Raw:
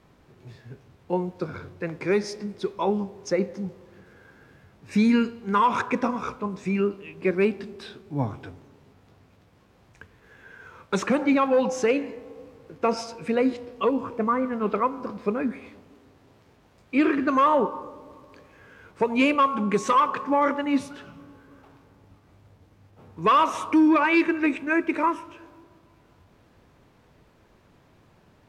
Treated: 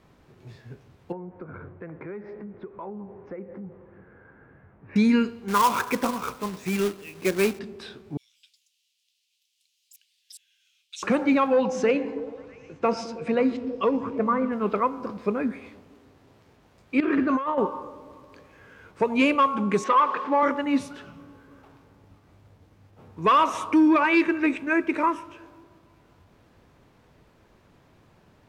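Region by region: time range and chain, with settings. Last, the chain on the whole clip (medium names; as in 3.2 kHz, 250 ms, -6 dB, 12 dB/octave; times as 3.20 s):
1.12–4.96 s: low-pass 1.9 kHz 24 dB/octave + compression 4:1, threshold -36 dBFS
5.48–7.59 s: bass shelf 360 Hz -3 dB + companded quantiser 4-bit
8.17–11.03 s: elliptic high-pass 2.9 kHz, stop band 70 dB + treble shelf 6.4 kHz -4.5 dB + ever faster or slower copies 181 ms, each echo +6 st, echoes 2, each echo -6 dB
11.53–14.52 s: distance through air 58 m + repeats whose band climbs or falls 108 ms, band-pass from 160 Hz, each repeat 0.7 oct, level -6.5 dB
17.00–17.58 s: low-pass 2.7 kHz 6 dB/octave + compressor with a negative ratio -23 dBFS, ratio -0.5
19.84–20.43 s: jump at every zero crossing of -34.5 dBFS + band-pass 300–2700 Hz
whole clip: none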